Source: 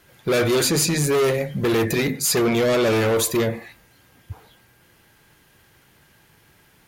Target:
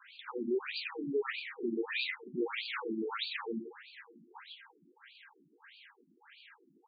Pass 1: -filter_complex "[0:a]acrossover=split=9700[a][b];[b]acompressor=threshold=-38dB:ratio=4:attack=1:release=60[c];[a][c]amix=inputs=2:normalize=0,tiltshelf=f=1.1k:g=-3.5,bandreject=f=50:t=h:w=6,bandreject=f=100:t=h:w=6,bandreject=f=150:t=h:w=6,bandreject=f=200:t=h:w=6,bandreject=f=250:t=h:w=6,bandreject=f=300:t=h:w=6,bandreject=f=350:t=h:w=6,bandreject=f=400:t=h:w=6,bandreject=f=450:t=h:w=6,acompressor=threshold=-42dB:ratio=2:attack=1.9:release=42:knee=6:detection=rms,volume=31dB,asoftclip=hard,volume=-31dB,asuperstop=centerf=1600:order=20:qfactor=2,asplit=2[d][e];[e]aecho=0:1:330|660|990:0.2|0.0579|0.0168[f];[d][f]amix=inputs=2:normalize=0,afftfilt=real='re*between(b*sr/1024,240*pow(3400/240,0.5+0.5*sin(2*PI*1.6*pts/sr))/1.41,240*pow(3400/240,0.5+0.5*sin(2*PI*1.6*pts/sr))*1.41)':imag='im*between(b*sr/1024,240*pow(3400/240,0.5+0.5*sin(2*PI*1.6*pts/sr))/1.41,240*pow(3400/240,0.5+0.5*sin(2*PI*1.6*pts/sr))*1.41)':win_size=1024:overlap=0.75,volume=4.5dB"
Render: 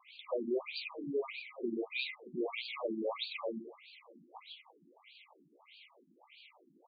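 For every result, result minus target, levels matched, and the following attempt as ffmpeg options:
compressor: peak gain reduction +6 dB; 2000 Hz band -2.5 dB
-filter_complex "[0:a]acrossover=split=9700[a][b];[b]acompressor=threshold=-38dB:ratio=4:attack=1:release=60[c];[a][c]amix=inputs=2:normalize=0,tiltshelf=f=1.1k:g=-3.5,bandreject=f=50:t=h:w=6,bandreject=f=100:t=h:w=6,bandreject=f=150:t=h:w=6,bandreject=f=200:t=h:w=6,bandreject=f=250:t=h:w=6,bandreject=f=300:t=h:w=6,bandreject=f=350:t=h:w=6,bandreject=f=400:t=h:w=6,bandreject=f=450:t=h:w=6,acompressor=threshold=-30.5dB:ratio=2:attack=1.9:release=42:knee=6:detection=rms,volume=31dB,asoftclip=hard,volume=-31dB,asuperstop=centerf=1600:order=20:qfactor=2,asplit=2[d][e];[e]aecho=0:1:330|660|990:0.2|0.0579|0.0168[f];[d][f]amix=inputs=2:normalize=0,afftfilt=real='re*between(b*sr/1024,240*pow(3400/240,0.5+0.5*sin(2*PI*1.6*pts/sr))/1.41,240*pow(3400/240,0.5+0.5*sin(2*PI*1.6*pts/sr))*1.41)':imag='im*between(b*sr/1024,240*pow(3400/240,0.5+0.5*sin(2*PI*1.6*pts/sr))/1.41,240*pow(3400/240,0.5+0.5*sin(2*PI*1.6*pts/sr))*1.41)':win_size=1024:overlap=0.75,volume=4.5dB"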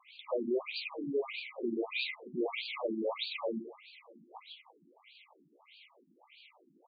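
2000 Hz band -2.5 dB
-filter_complex "[0:a]acrossover=split=9700[a][b];[b]acompressor=threshold=-38dB:ratio=4:attack=1:release=60[c];[a][c]amix=inputs=2:normalize=0,tiltshelf=f=1.1k:g=-3.5,bandreject=f=50:t=h:w=6,bandreject=f=100:t=h:w=6,bandreject=f=150:t=h:w=6,bandreject=f=200:t=h:w=6,bandreject=f=250:t=h:w=6,bandreject=f=300:t=h:w=6,bandreject=f=350:t=h:w=6,bandreject=f=400:t=h:w=6,bandreject=f=450:t=h:w=6,acompressor=threshold=-30.5dB:ratio=2:attack=1.9:release=42:knee=6:detection=rms,volume=31dB,asoftclip=hard,volume=-31dB,asuperstop=centerf=620:order=20:qfactor=2,asplit=2[d][e];[e]aecho=0:1:330|660|990:0.2|0.0579|0.0168[f];[d][f]amix=inputs=2:normalize=0,afftfilt=real='re*between(b*sr/1024,240*pow(3400/240,0.5+0.5*sin(2*PI*1.6*pts/sr))/1.41,240*pow(3400/240,0.5+0.5*sin(2*PI*1.6*pts/sr))*1.41)':imag='im*between(b*sr/1024,240*pow(3400/240,0.5+0.5*sin(2*PI*1.6*pts/sr))/1.41,240*pow(3400/240,0.5+0.5*sin(2*PI*1.6*pts/sr))*1.41)':win_size=1024:overlap=0.75,volume=4.5dB"

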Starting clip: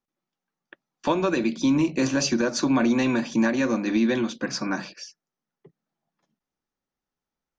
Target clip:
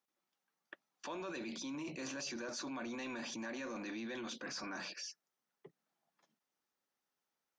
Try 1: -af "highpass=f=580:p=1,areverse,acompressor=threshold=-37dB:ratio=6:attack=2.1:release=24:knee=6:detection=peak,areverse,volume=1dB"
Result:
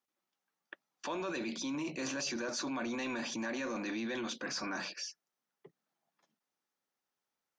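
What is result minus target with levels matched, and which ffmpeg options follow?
compressor: peak gain reduction -6 dB
-af "highpass=f=580:p=1,areverse,acompressor=threshold=-44dB:ratio=6:attack=2.1:release=24:knee=6:detection=peak,areverse,volume=1dB"

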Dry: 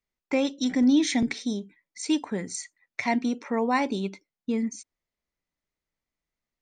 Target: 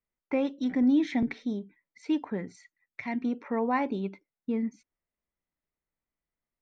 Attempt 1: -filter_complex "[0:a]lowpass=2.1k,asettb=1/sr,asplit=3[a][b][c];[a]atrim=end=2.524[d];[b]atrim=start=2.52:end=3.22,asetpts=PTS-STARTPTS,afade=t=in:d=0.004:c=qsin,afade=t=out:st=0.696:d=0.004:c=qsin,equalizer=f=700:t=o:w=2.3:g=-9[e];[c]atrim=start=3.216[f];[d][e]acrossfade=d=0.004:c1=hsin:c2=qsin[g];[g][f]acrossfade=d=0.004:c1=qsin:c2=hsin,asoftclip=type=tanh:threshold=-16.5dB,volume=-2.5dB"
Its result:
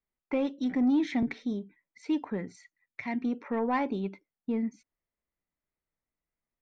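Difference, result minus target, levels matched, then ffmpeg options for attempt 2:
soft clip: distortion +16 dB
-filter_complex "[0:a]lowpass=2.1k,asettb=1/sr,asplit=3[a][b][c];[a]atrim=end=2.524[d];[b]atrim=start=2.52:end=3.22,asetpts=PTS-STARTPTS,afade=t=in:d=0.004:c=qsin,afade=t=out:st=0.696:d=0.004:c=qsin,equalizer=f=700:t=o:w=2.3:g=-9[e];[c]atrim=start=3.216[f];[d][e]acrossfade=d=0.004:c1=hsin:c2=qsin[g];[g][f]acrossfade=d=0.004:c1=qsin:c2=hsin,asoftclip=type=tanh:threshold=-7dB,volume=-2.5dB"

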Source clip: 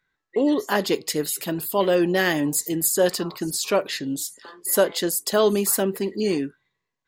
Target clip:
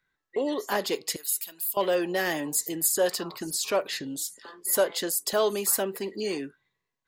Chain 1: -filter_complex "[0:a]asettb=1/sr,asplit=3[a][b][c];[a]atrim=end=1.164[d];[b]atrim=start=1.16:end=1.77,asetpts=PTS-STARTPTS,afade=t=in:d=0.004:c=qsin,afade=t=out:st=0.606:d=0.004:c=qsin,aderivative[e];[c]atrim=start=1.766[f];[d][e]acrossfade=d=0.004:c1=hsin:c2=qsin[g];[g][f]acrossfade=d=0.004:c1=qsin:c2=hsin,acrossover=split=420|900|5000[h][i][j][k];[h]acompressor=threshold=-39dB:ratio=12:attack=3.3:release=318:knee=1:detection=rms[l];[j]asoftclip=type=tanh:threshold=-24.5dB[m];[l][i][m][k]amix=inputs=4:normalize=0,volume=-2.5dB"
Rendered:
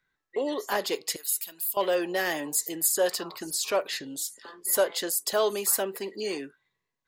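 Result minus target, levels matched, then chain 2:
compressor: peak gain reduction +7 dB
-filter_complex "[0:a]asettb=1/sr,asplit=3[a][b][c];[a]atrim=end=1.164[d];[b]atrim=start=1.16:end=1.77,asetpts=PTS-STARTPTS,afade=t=in:d=0.004:c=qsin,afade=t=out:st=0.606:d=0.004:c=qsin,aderivative[e];[c]atrim=start=1.766[f];[d][e]acrossfade=d=0.004:c1=hsin:c2=qsin[g];[g][f]acrossfade=d=0.004:c1=qsin:c2=hsin,acrossover=split=420|900|5000[h][i][j][k];[h]acompressor=threshold=-31.5dB:ratio=12:attack=3.3:release=318:knee=1:detection=rms[l];[j]asoftclip=type=tanh:threshold=-24.5dB[m];[l][i][m][k]amix=inputs=4:normalize=0,volume=-2.5dB"

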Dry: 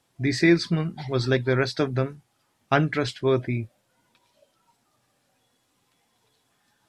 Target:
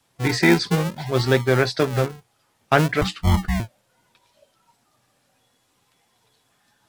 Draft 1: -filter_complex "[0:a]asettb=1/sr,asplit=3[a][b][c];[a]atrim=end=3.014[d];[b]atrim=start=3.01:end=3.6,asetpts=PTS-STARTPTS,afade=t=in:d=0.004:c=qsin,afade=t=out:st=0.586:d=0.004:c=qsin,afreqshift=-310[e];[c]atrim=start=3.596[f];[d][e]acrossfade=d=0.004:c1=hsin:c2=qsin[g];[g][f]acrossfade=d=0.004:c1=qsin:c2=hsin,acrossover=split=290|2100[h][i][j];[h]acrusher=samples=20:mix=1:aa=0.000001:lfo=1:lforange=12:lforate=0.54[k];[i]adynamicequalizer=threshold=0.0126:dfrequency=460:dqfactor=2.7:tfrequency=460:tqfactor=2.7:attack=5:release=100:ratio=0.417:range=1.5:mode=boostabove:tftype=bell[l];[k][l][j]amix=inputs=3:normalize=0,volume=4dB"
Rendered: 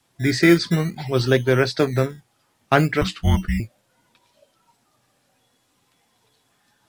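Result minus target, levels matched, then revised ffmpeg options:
decimation with a swept rate: distortion -10 dB
-filter_complex "[0:a]asettb=1/sr,asplit=3[a][b][c];[a]atrim=end=3.014[d];[b]atrim=start=3.01:end=3.6,asetpts=PTS-STARTPTS,afade=t=in:d=0.004:c=qsin,afade=t=out:st=0.586:d=0.004:c=qsin,afreqshift=-310[e];[c]atrim=start=3.596[f];[d][e]acrossfade=d=0.004:c1=hsin:c2=qsin[g];[g][f]acrossfade=d=0.004:c1=qsin:c2=hsin,acrossover=split=290|2100[h][i][j];[h]acrusher=samples=59:mix=1:aa=0.000001:lfo=1:lforange=35.4:lforate=0.54[k];[i]adynamicequalizer=threshold=0.0126:dfrequency=460:dqfactor=2.7:tfrequency=460:tqfactor=2.7:attack=5:release=100:ratio=0.417:range=1.5:mode=boostabove:tftype=bell[l];[k][l][j]amix=inputs=3:normalize=0,volume=4dB"

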